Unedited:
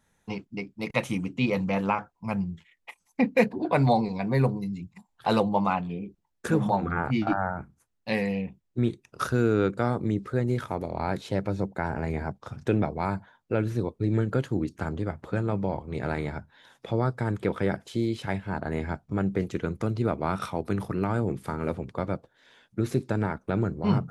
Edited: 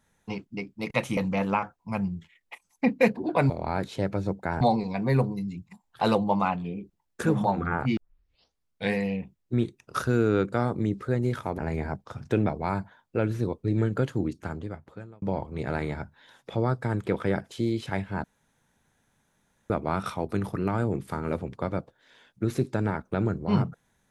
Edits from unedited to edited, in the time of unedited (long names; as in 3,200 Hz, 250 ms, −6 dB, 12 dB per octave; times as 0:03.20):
0:01.17–0:01.53: remove
0:07.22: tape start 0.98 s
0:10.83–0:11.94: move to 0:03.86
0:14.54–0:15.58: fade out
0:18.60–0:20.06: fill with room tone